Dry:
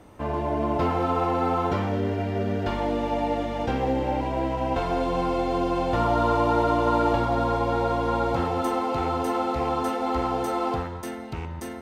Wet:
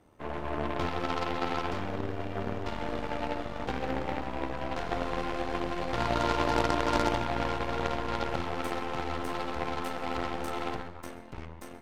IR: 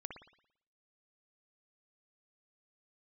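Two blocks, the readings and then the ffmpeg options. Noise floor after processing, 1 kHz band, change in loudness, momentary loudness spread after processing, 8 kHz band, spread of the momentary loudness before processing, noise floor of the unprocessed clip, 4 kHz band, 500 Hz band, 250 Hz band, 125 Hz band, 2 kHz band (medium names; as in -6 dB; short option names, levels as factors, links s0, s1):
-45 dBFS, -7.5 dB, -7.0 dB, 8 LU, no reading, 6 LU, -35 dBFS, 0.0 dB, -8.5 dB, -8.5 dB, -8.0 dB, -0.5 dB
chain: -filter_complex "[0:a]aeval=exprs='0.266*(cos(1*acos(clip(val(0)/0.266,-1,1)))-cos(1*PI/2))+0.0596*(cos(3*acos(clip(val(0)/0.266,-1,1)))-cos(3*PI/2))+0.0335*(cos(6*acos(clip(val(0)/0.266,-1,1)))-cos(6*PI/2))+0.0422*(cos(8*acos(clip(val(0)/0.266,-1,1)))-cos(8*PI/2))':c=same,tremolo=f=79:d=0.571,asplit=2[s0][s1];[1:a]atrim=start_sample=2205,adelay=133[s2];[s1][s2]afir=irnorm=-1:irlink=0,volume=0.188[s3];[s0][s3]amix=inputs=2:normalize=0"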